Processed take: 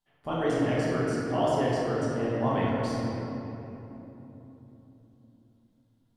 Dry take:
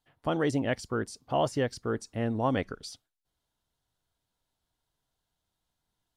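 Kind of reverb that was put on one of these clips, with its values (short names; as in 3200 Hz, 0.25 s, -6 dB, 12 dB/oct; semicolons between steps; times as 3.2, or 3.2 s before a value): shoebox room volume 210 m³, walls hard, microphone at 1.2 m; gain -6.5 dB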